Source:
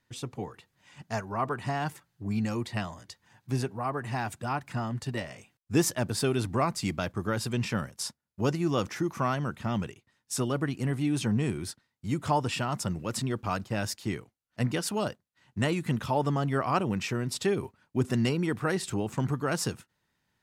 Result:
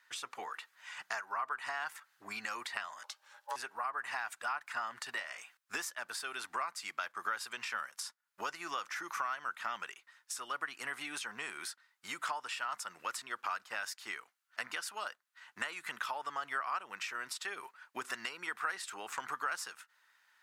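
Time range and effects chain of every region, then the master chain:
3.03–3.56 s: Butterworth band-stop 1.5 kHz, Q 1.2 + ring modulator 710 Hz
whole clip: high-pass 1.1 kHz 12 dB/octave; compression 6:1, threshold -47 dBFS; peaking EQ 1.4 kHz +9 dB 1.2 oct; trim +5.5 dB

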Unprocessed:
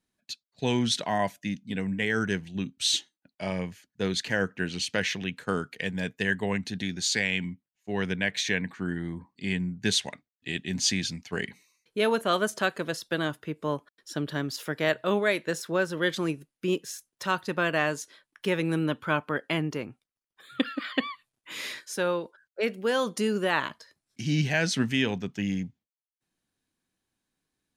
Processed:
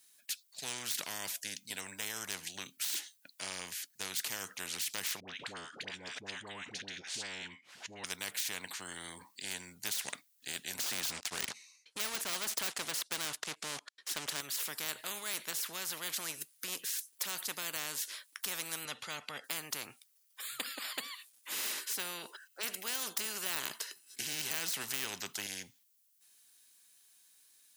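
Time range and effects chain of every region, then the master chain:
5.20–8.04 s: tape spacing loss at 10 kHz 31 dB + phase dispersion highs, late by 82 ms, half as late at 720 Hz + swell ahead of each attack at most 150 dB/s
10.79–14.41 s: waveshaping leveller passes 3 + distance through air 96 m
18.85–19.44 s: low-pass 5.1 kHz + comb 1.5 ms, depth 74%
21.52–25.47 s: comb 1 ms, depth 55% + small resonant body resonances 400/1500/2600 Hz, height 18 dB, ringing for 25 ms
whole clip: de-esser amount 65%; differentiator; spectrum-flattening compressor 4:1; trim +6 dB

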